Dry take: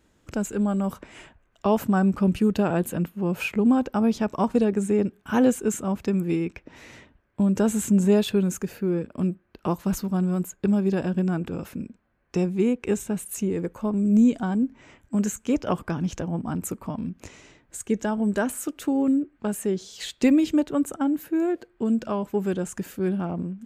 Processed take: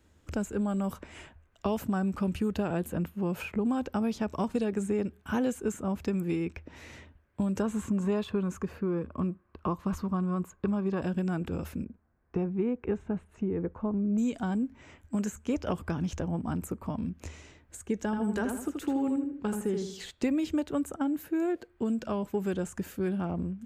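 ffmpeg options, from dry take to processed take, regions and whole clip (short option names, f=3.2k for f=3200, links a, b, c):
-filter_complex "[0:a]asettb=1/sr,asplit=3[a][b][c];[a]atrim=end=7.624[d];[b]atrim=start=7.62:end=11.02,asetpts=PTS-STARTPTS,afade=t=in:d=0.004:c=qsin,afade=t=out:st=3.396:d=0.004:c=qsin,lowpass=f=1.9k:p=1,equalizer=f=1.1k:t=o:w=0.27:g=13.5[e];[c]atrim=start=11.016[f];[d][e]acrossfade=d=0.004:c1=hsin:c2=qsin[g];[g][f]acrossfade=d=0.004:c1=qsin:c2=hsin,asettb=1/sr,asplit=3[h][i][j];[h]atrim=end=11.844[k];[i]atrim=start=11.84:end=14.18,asetpts=PTS-STARTPTS,afade=t=in:d=0.004:c=qsin,afade=t=out:st=2.336:d=0.004:c=qsin,lowpass=1.4k,bandreject=f=560:w=13[l];[j]atrim=start=14.176[m];[k][l]acrossfade=d=0.004:c1=hsin:c2=qsin[n];[n][m]acrossfade=d=0.004:c1=qsin:c2=hsin,asettb=1/sr,asplit=3[o][p][q];[o]atrim=end=18.054[r];[p]atrim=start=18.05:end=20.11,asetpts=PTS-STARTPTS,afade=t=in:d=0.004:c=qsin,afade=t=out:st=2.056:d=0.004:c=qsin,bandreject=f=620:w=8,asplit=2[s][t];[t]adelay=80,lowpass=f=3.2k:p=1,volume=-5dB,asplit=2[u][v];[v]adelay=80,lowpass=f=3.2k:p=1,volume=0.34,asplit=2[w][x];[x]adelay=80,lowpass=f=3.2k:p=1,volume=0.34,asplit=2[y][z];[z]adelay=80,lowpass=f=3.2k:p=1,volume=0.34[aa];[s][u][w][y][aa]amix=inputs=5:normalize=0,atrim=end_sample=90846[ab];[q]atrim=start=20.106[ac];[r][ab]acrossfade=d=0.004:c1=hsin:c2=qsin[ad];[ad][ac]acrossfade=d=0.004:c1=qsin:c2=hsin,equalizer=f=78:w=4.8:g=14.5,acrossover=split=600|1700[ae][af][ag];[ae]acompressor=threshold=-25dB:ratio=4[ah];[af]acompressor=threshold=-35dB:ratio=4[ai];[ag]acompressor=threshold=-42dB:ratio=4[aj];[ah][ai][aj]amix=inputs=3:normalize=0,volume=-2.5dB"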